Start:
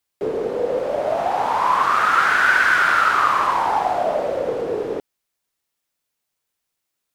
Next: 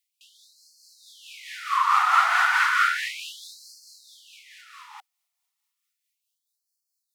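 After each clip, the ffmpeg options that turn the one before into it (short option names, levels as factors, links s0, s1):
-af "tremolo=f=4.6:d=0.35,bandreject=f=1600:w=5.5,afftfilt=real='re*gte(b*sr/1024,640*pow(4200/640,0.5+0.5*sin(2*PI*0.33*pts/sr)))':imag='im*gte(b*sr/1024,640*pow(4200/640,0.5+0.5*sin(2*PI*0.33*pts/sr)))':win_size=1024:overlap=0.75"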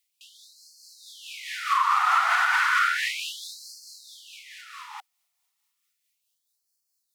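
-af "alimiter=limit=0.15:level=0:latency=1:release=225,volume=1.58"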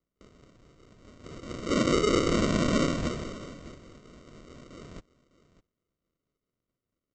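-af "aresample=16000,acrusher=samples=19:mix=1:aa=0.000001,aresample=44100,aecho=1:1:604:0.126,volume=0.708"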